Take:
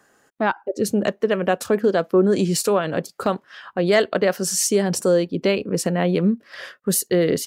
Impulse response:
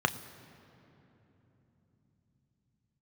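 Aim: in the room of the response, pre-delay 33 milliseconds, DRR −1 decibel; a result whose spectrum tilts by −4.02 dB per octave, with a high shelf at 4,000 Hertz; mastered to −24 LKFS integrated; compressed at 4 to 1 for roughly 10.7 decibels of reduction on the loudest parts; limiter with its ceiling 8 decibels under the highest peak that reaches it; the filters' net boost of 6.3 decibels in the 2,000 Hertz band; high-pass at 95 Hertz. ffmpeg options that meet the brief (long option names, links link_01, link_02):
-filter_complex "[0:a]highpass=95,equalizer=frequency=2000:width_type=o:gain=6,highshelf=frequency=4000:gain=8,acompressor=threshold=-24dB:ratio=4,alimiter=limit=-18dB:level=0:latency=1,asplit=2[link_01][link_02];[1:a]atrim=start_sample=2205,adelay=33[link_03];[link_02][link_03]afir=irnorm=-1:irlink=0,volume=-9.5dB[link_04];[link_01][link_04]amix=inputs=2:normalize=0,volume=2.5dB"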